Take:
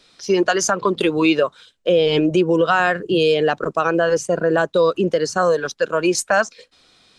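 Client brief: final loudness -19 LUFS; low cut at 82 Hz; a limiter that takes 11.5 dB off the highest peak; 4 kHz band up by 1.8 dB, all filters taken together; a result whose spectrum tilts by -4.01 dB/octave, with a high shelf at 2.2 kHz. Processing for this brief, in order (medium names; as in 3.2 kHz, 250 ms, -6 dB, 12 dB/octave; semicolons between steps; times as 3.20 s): high-pass 82 Hz; treble shelf 2.2 kHz -4 dB; peaking EQ 4 kHz +6.5 dB; trim +6.5 dB; peak limiter -9.5 dBFS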